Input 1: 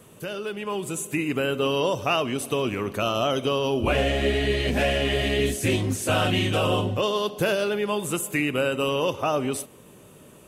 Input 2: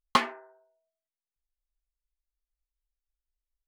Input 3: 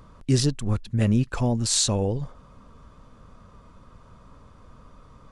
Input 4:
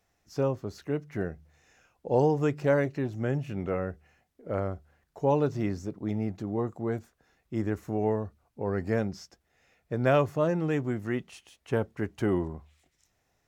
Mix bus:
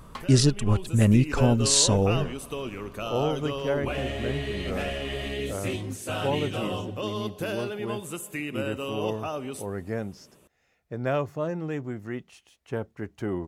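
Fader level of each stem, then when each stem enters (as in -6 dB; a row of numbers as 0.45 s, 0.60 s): -8.5 dB, -16.5 dB, +2.0 dB, -3.5 dB; 0.00 s, 0.00 s, 0.00 s, 1.00 s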